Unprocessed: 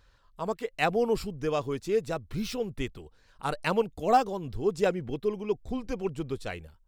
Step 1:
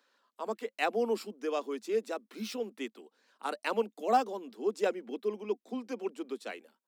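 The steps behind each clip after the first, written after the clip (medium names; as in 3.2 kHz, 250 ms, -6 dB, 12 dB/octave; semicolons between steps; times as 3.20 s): steep high-pass 210 Hz 96 dB/octave; trim -4 dB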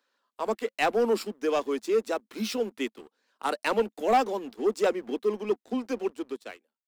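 fade out at the end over 0.94 s; waveshaping leveller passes 2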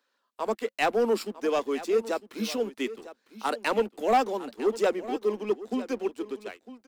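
delay 953 ms -15.5 dB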